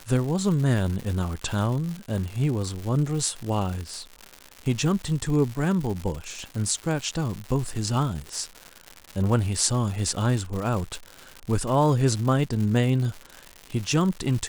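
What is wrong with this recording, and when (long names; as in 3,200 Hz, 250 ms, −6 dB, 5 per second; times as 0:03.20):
surface crackle 210 per second −30 dBFS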